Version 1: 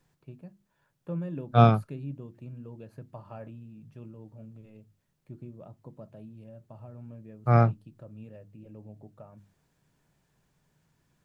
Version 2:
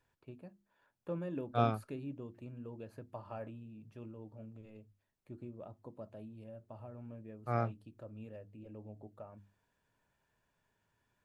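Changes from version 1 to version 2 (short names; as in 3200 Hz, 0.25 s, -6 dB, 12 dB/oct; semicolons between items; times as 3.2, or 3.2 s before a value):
second voice -10.5 dB; master: add bell 150 Hz -13.5 dB 0.56 oct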